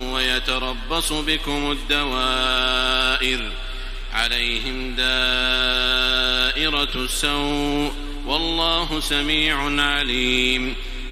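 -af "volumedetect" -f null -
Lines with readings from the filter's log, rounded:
mean_volume: -21.4 dB
max_volume: -5.3 dB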